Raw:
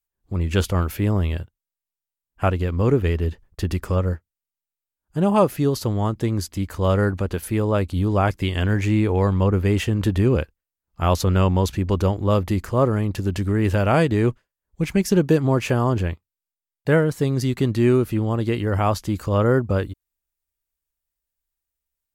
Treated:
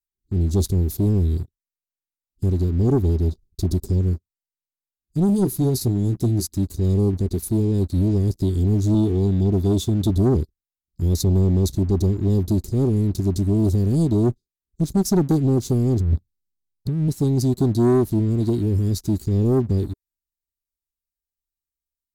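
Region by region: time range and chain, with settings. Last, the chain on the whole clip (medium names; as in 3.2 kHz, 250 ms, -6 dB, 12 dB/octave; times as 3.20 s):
5.27–6.47 s: peaking EQ 11 kHz +6 dB 0.26 oct + doubling 16 ms -7.5 dB
8.94–10.10 s: high-pass 85 Hz 6 dB/octave + small resonant body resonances 1.5/2.2/3.5 kHz, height 16 dB, ringing for 25 ms
16.00–17.08 s: tone controls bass +12 dB, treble -7 dB + compressor with a negative ratio -22 dBFS
whole clip: Chebyshev band-stop 400–3800 Hz, order 5; dynamic bell 4.8 kHz, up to -4 dB, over -50 dBFS, Q 1.6; waveshaping leveller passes 2; trim -3 dB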